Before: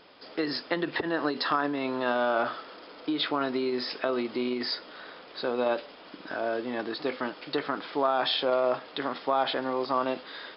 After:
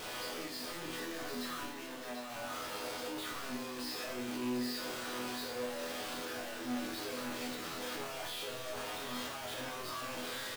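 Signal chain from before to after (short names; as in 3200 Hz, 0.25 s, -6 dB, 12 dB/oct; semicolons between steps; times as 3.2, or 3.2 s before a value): infinite clipping; 1.65–2.3 HPF 230 Hz 24 dB/oct; hard clip -31 dBFS, distortion -21 dB; resonator bank E2 major, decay 0.64 s; on a send: echo 0.743 s -8.5 dB; on the sum: gain +5 dB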